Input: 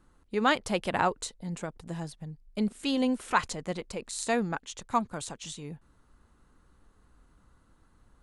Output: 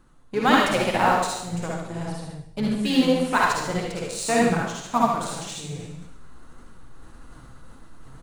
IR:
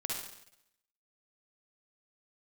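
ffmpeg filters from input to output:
-filter_complex "[0:a]aecho=1:1:76:0.355,asplit=2[link_01][link_02];[link_02]acrusher=bits=4:mix=0:aa=0.5,volume=-6dB[link_03];[link_01][link_03]amix=inputs=2:normalize=0,asplit=2[link_04][link_05];[link_05]asetrate=29433,aresample=44100,atempo=1.49831,volume=-13dB[link_06];[link_04][link_06]amix=inputs=2:normalize=0[link_07];[1:a]atrim=start_sample=2205[link_08];[link_07][link_08]afir=irnorm=-1:irlink=0,flanger=delay=3.5:depth=5.4:regen=64:speed=1.8:shape=triangular,areverse,acompressor=mode=upward:threshold=-35dB:ratio=2.5,areverse,volume=5.5dB"

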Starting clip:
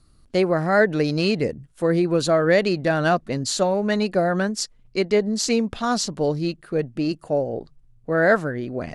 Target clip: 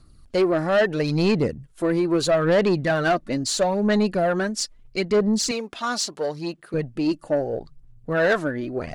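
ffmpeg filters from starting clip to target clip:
ffmpeg -i in.wav -filter_complex "[0:a]aphaser=in_gain=1:out_gain=1:delay=3.5:decay=0.46:speed=0.76:type=sinusoidal,asoftclip=type=tanh:threshold=-13.5dB,asettb=1/sr,asplit=3[link_01][link_02][link_03];[link_01]atrim=end=5.514[link_04];[link_02]atrim=start=5.51:end=6.74,asetpts=PTS-STARTPTS,afade=type=in:duration=0.004:curve=qsin,afade=type=out:start_time=1.226:duration=0.004:curve=qsin,highpass=frequency=570:poles=1[link_05];[link_03]atrim=start=6.736[link_06];[link_04][link_05]acrossfade=duration=0.004:curve1=hsin:curve2=qsin[link_07];[link_07][link_06]acrossfade=duration=0.004:curve1=qsin:curve2=hsin" out.wav

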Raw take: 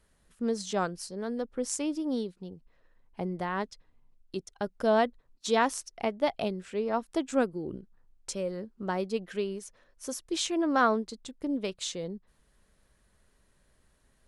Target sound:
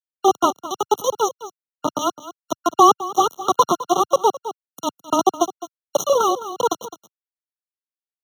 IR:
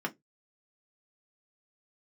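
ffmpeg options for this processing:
-filter_complex "[0:a]aeval=exprs='val(0)+0.5*0.0376*sgn(val(0))':channel_layout=same,acrusher=bits=3:mix=0:aa=0.000001,aecho=1:1:365:0.168,dynaudnorm=framelen=110:gausssize=5:maxgain=15dB,highpass=frequency=84:width=0.5412,highpass=frequency=84:width=1.3066,highshelf=frequency=3900:width_type=q:width=3:gain=-7.5,acrossover=split=9800[link_01][link_02];[link_02]acompressor=threshold=-39dB:ratio=4:attack=1:release=60[link_03];[link_01][link_03]amix=inputs=2:normalize=0,equalizer=frequency=2100:width=1.1:gain=-11.5,asetrate=76440,aresample=44100,afreqshift=-19,afftfilt=real='re*eq(mod(floor(b*sr/1024/1400),2),0)':imag='im*eq(mod(floor(b*sr/1024/1400),2),0)':win_size=1024:overlap=0.75,volume=-1dB"

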